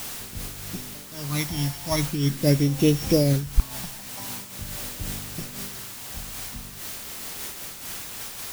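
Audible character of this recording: a buzz of ramps at a fixed pitch in blocks of 8 samples; phasing stages 12, 0.44 Hz, lowest notch 410–1600 Hz; a quantiser's noise floor 6-bit, dither triangular; noise-modulated level

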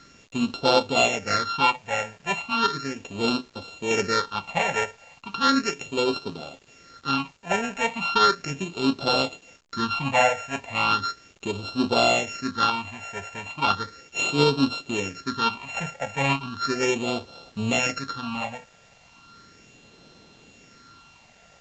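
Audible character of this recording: a buzz of ramps at a fixed pitch in blocks of 32 samples; phasing stages 6, 0.36 Hz, lowest notch 310–1900 Hz; a quantiser's noise floor 10-bit, dither none; A-law

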